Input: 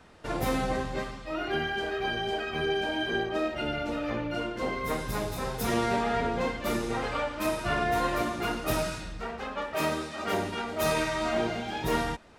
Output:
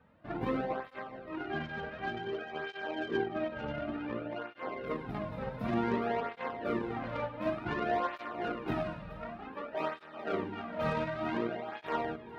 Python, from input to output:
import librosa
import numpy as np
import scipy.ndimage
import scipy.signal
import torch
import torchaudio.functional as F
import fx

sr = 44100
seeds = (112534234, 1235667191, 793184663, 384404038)

y = fx.air_absorb(x, sr, metres=480.0)
y = fx.echo_split(y, sr, split_hz=370.0, low_ms=161, high_ms=425, feedback_pct=52, wet_db=-10)
y = fx.cheby_harmonics(y, sr, harmonics=(7,), levels_db=(-24,), full_scale_db=-16.0)
y = fx.flanger_cancel(y, sr, hz=0.55, depth_ms=3.0)